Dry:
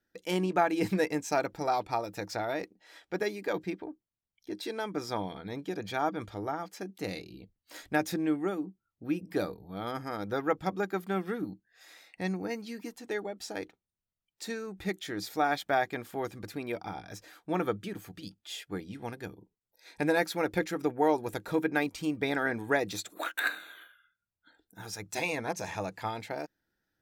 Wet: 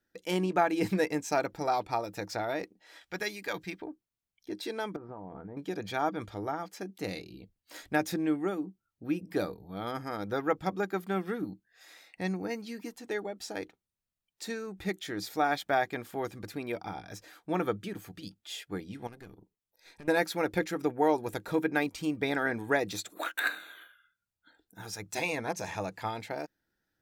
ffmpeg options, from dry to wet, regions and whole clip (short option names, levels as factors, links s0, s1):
-filter_complex "[0:a]asettb=1/sr,asplit=3[s0][s1][s2];[s0]atrim=end=3.014[s3];[s1]atrim=start=3.01:end=3.82,asetpts=PTS-STARTPTS,afade=t=in:d=0.004:c=qsin,afade=t=out:st=0.806:d=0.004:c=qsin,equalizer=f=370:w=0.41:g=-13,acontrast=37[s4];[s2]atrim=start=3.816[s5];[s3][s4]acrossfade=d=0.004:c1=hsin:c2=qsin[s6];[s6][s5]acrossfade=d=0.004:c1=qsin:c2=hsin,asettb=1/sr,asplit=3[s7][s8][s9];[s7]atrim=end=4.964[s10];[s8]atrim=start=4.96:end=5.57,asetpts=PTS-STARTPTS,afade=t=in:d=0.004:c=qsin,afade=t=out:st=0.606:d=0.004:c=qsin,lowpass=f=1300:w=0.5412,lowpass=f=1300:w=1.3066,acompressor=threshold=0.0126:ratio=10:attack=3.2:release=140:knee=1:detection=peak[s11];[s9]atrim=start=5.566[s12];[s10][s11]acrossfade=d=0.004:c1=hsin:c2=qsin[s13];[s13][s12]acrossfade=d=0.004:c1=qsin:c2=hsin,asettb=1/sr,asplit=3[s14][s15][s16];[s14]atrim=end=19.074[s17];[s15]atrim=start=19.07:end=20.08,asetpts=PTS-STARTPTS,afade=t=in:d=0.004:c=qsin,afade=t=out:st=1.006:d=0.004:c=qsin,acompressor=threshold=0.0112:ratio=6:attack=3.2:release=140:knee=1:detection=peak,aeval=exprs='(tanh(126*val(0)+0.6)-tanh(0.6))/126':c=same[s18];[s16]atrim=start=20.076[s19];[s17][s18]acrossfade=d=0.004:c1=hsin:c2=qsin[s20];[s20][s19]acrossfade=d=0.004:c1=qsin:c2=hsin"